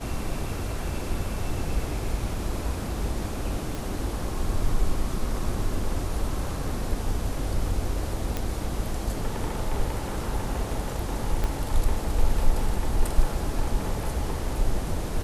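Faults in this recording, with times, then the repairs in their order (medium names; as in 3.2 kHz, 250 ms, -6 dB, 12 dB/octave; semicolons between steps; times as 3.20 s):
3.75 s: pop
8.37 s: pop -13 dBFS
11.44 s: pop -15 dBFS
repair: de-click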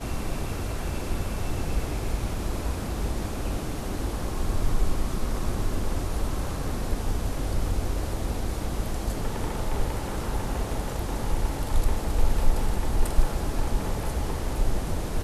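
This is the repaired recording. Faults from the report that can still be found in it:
11.44 s: pop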